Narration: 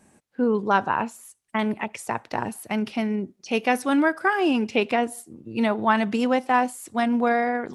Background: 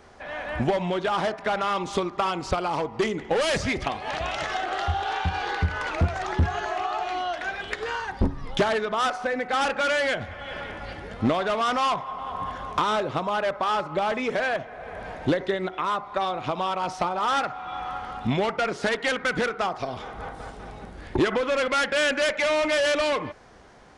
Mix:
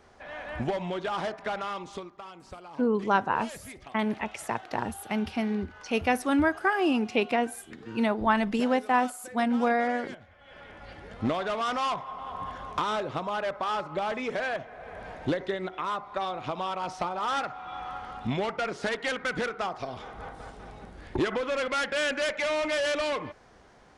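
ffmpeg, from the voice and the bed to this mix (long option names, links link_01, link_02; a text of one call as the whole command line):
ffmpeg -i stem1.wav -i stem2.wav -filter_complex "[0:a]adelay=2400,volume=-3.5dB[link_01];[1:a]volume=8dB,afade=type=out:start_time=1.47:duration=0.72:silence=0.223872,afade=type=in:start_time=10.4:duration=0.91:silence=0.199526[link_02];[link_01][link_02]amix=inputs=2:normalize=0" out.wav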